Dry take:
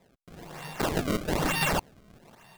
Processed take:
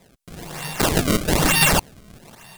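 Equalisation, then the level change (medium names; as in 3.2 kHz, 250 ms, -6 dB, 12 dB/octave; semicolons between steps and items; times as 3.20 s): bass shelf 230 Hz +5.5 dB; treble shelf 2.1 kHz +8 dB; peaking EQ 9.7 kHz +3 dB 0.77 oct; +5.5 dB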